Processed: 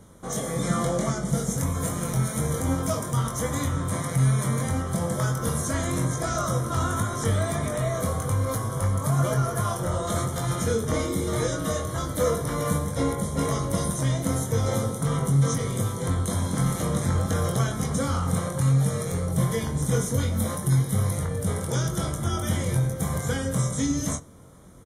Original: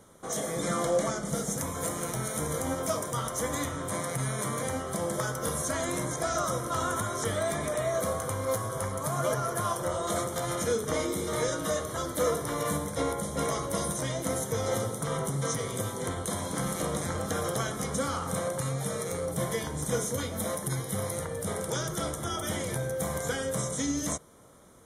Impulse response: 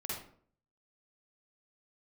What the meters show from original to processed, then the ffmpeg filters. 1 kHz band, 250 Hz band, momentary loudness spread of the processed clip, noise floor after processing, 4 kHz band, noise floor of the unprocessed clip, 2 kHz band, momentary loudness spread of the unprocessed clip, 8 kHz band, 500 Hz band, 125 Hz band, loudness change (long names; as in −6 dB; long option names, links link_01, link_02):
+1.5 dB, +7.0 dB, 4 LU, −32 dBFS, +1.5 dB, −37 dBFS, +1.0 dB, 3 LU, +1.5 dB, +1.0 dB, +11.5 dB, +5.0 dB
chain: -filter_complex "[0:a]bass=frequency=250:gain=10,treble=frequency=4000:gain=0,asplit=2[link_01][link_02];[link_02]adelay=22,volume=-5.5dB[link_03];[link_01][link_03]amix=inputs=2:normalize=0,asplit=2[link_04][link_05];[1:a]atrim=start_sample=2205[link_06];[link_05][link_06]afir=irnorm=-1:irlink=0,volume=-22.5dB[link_07];[link_04][link_07]amix=inputs=2:normalize=0"